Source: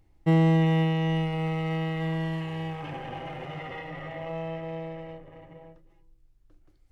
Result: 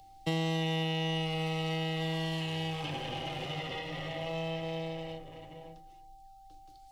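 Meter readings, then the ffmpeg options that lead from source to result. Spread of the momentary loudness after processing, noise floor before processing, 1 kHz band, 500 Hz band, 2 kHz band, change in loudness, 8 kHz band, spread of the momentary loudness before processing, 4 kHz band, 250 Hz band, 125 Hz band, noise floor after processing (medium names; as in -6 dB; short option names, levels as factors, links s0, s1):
15 LU, -61 dBFS, -3.5 dB, -4.0 dB, -2.0 dB, -6.0 dB, no reading, 16 LU, +6.5 dB, -8.5 dB, -8.5 dB, -55 dBFS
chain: -filter_complex "[0:a]bandreject=f=56.32:t=h:w=4,bandreject=f=112.64:t=h:w=4,bandreject=f=168.96:t=h:w=4,bandreject=f=225.28:t=h:w=4,bandreject=f=281.6:t=h:w=4,bandreject=f=337.92:t=h:w=4,bandreject=f=394.24:t=h:w=4,bandreject=f=450.56:t=h:w=4,bandreject=f=506.88:t=h:w=4,bandreject=f=563.2:t=h:w=4,bandreject=f=619.52:t=h:w=4,bandreject=f=675.84:t=h:w=4,bandreject=f=732.16:t=h:w=4,bandreject=f=788.48:t=h:w=4,bandreject=f=844.8:t=h:w=4,bandreject=f=901.12:t=h:w=4,bandreject=f=957.44:t=h:w=4,bandreject=f=1013.76:t=h:w=4,bandreject=f=1070.08:t=h:w=4,bandreject=f=1126.4:t=h:w=4,bandreject=f=1182.72:t=h:w=4,bandreject=f=1239.04:t=h:w=4,bandreject=f=1295.36:t=h:w=4,bandreject=f=1351.68:t=h:w=4,bandreject=f=1408:t=h:w=4,bandreject=f=1464.32:t=h:w=4,bandreject=f=1520.64:t=h:w=4,bandreject=f=1576.96:t=h:w=4,bandreject=f=1633.28:t=h:w=4,bandreject=f=1689.6:t=h:w=4,bandreject=f=1745.92:t=h:w=4,bandreject=f=1802.24:t=h:w=4,bandreject=f=1858.56:t=h:w=4,bandreject=f=1914.88:t=h:w=4,bandreject=f=1971.2:t=h:w=4,bandreject=f=2027.52:t=h:w=4,bandreject=f=2083.84:t=h:w=4,bandreject=f=2140.16:t=h:w=4,bandreject=f=2196.48:t=h:w=4,acrossover=split=190|380|1000|3100[s0][s1][s2][s3][s4];[s0]acompressor=threshold=0.0126:ratio=4[s5];[s1]acompressor=threshold=0.00708:ratio=4[s6];[s2]acompressor=threshold=0.0141:ratio=4[s7];[s3]acompressor=threshold=0.00794:ratio=4[s8];[s4]acompressor=threshold=0.00126:ratio=4[s9];[s5][s6][s7][s8][s9]amix=inputs=5:normalize=0,aeval=exprs='val(0)+0.00251*sin(2*PI*780*n/s)':c=same,highshelf=f=2600:t=q:w=1.5:g=13,acrossover=split=100[s10][s11];[s10]acrusher=samples=23:mix=1:aa=0.000001:lfo=1:lforange=23:lforate=2.4[s12];[s12][s11]amix=inputs=2:normalize=0"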